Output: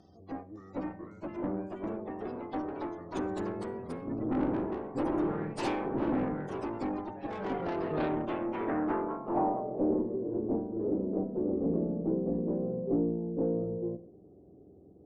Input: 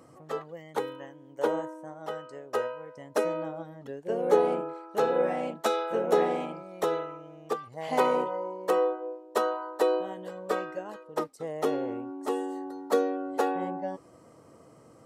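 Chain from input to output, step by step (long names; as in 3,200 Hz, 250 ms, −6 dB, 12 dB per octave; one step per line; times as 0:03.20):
phase-vocoder pitch shift without resampling −8.5 semitones
gate on every frequency bin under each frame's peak −30 dB strong
dynamic equaliser 400 Hz, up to −4 dB, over −37 dBFS, Q 1.5
tube saturation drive 27 dB, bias 0.55
delay with pitch and tempo change per echo 556 ms, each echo +2 semitones, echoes 3
on a send at −20 dB: convolution reverb RT60 0.60 s, pre-delay 47 ms
on the sum: low-pass filter sweep 9,900 Hz → 450 Hz, 0:07.21–0:10.03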